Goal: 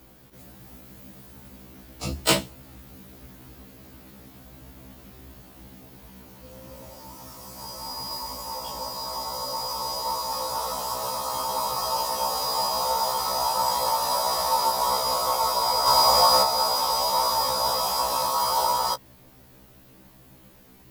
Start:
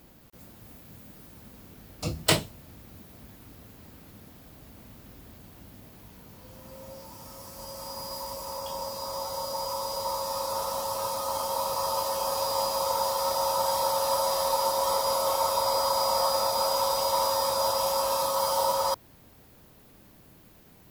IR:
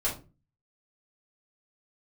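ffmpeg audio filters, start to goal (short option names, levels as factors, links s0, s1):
-filter_complex "[0:a]asettb=1/sr,asplit=3[s0][s1][s2];[s0]atrim=end=15.874[s3];[s1]atrim=start=15.87:end=16.43,asetpts=PTS-STARTPTS,afade=t=in:d=0.004:c=qsin,afade=t=out:st=0.556:d=0.004:c=qsin,acontrast=29[s4];[s2]atrim=start=16.426[s5];[s3][s4]acrossfade=d=0.004:c1=hsin:c2=qsin[s6];[s6][s5]acrossfade=d=0.004:c1=qsin:c2=hsin,afftfilt=real='re*1.73*eq(mod(b,3),0)':imag='im*1.73*eq(mod(b,3),0)':win_size=2048:overlap=0.75,volume=1.78"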